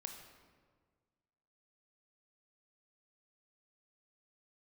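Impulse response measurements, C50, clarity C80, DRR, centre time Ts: 5.5 dB, 7.0 dB, 3.5 dB, 37 ms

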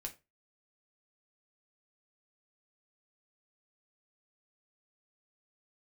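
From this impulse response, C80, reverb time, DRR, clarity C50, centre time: 22.0 dB, 0.25 s, 2.5 dB, 15.5 dB, 9 ms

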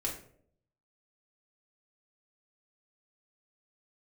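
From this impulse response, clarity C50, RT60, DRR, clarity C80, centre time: 8.0 dB, 0.60 s, −3.0 dB, 11.5 dB, 26 ms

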